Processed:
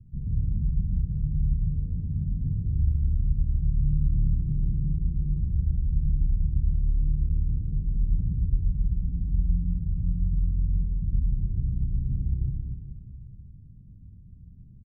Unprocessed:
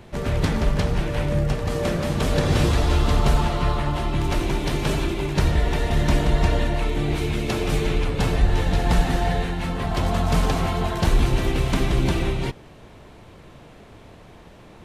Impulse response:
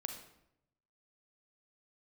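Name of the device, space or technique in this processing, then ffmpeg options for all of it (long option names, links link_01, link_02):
club heard from the street: -filter_complex "[0:a]alimiter=limit=-17dB:level=0:latency=1:release=212,lowpass=frequency=160:width=0.5412,lowpass=frequency=160:width=1.3066[link_01];[1:a]atrim=start_sample=2205[link_02];[link_01][link_02]afir=irnorm=-1:irlink=0,lowpass=1100,asettb=1/sr,asplit=3[link_03][link_04][link_05];[link_03]atrim=end=3.804[link_06];[link_04]atrim=start=3.8:end=4.92,asetpts=PTS-STARTPTS,afade=type=in:duration=0.004:curve=qsin,afade=type=out:start_time=1.116:duration=0.004:curve=qsin,equalizer=frequency=180:width=1:gain=5[link_07];[link_05]atrim=start=4.916[link_08];[link_06][link_07]acrossfade=duration=0.004:curve1=hsin:curve2=qsin[link_09];[link_09][link_08]acrossfade=duration=0.004:curve1=qsin:curve2=hsin,aecho=1:1:110|242|400.4|590.5|818.6:0.631|0.398|0.251|0.158|0.1,volume=1dB"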